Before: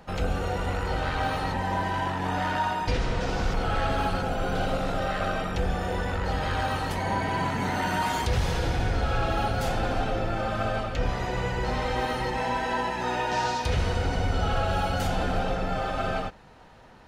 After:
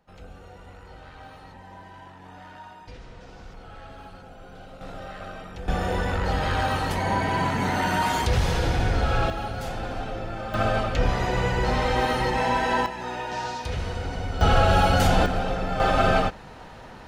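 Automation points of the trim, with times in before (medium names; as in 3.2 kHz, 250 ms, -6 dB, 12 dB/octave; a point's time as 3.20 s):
-17 dB
from 4.81 s -10 dB
from 5.68 s +3 dB
from 9.30 s -4.5 dB
from 10.54 s +4.5 dB
from 12.86 s -4 dB
from 14.41 s +7.5 dB
from 15.26 s +1 dB
from 15.80 s +8.5 dB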